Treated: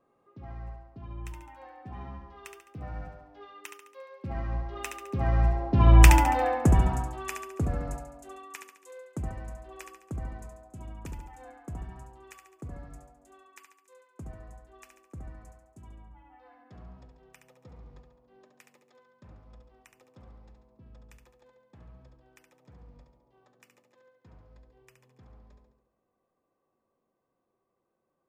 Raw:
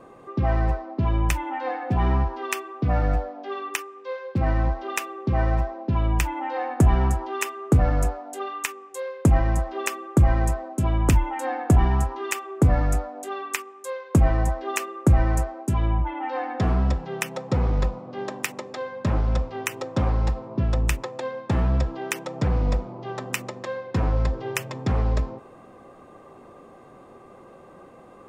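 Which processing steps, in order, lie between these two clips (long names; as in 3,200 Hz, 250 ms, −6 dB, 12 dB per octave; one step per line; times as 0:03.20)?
source passing by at 0:06.07, 9 m/s, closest 1.8 metres
flutter between parallel walls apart 12 metres, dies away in 0.71 s
level +6 dB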